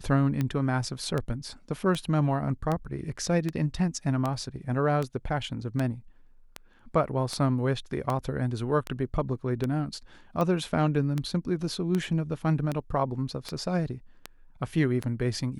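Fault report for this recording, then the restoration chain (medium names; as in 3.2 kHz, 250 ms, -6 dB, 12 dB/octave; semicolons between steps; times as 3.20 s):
tick 78 rpm -16 dBFS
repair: de-click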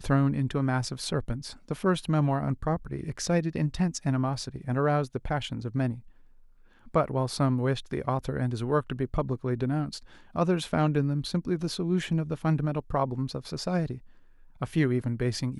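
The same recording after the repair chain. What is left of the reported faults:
nothing left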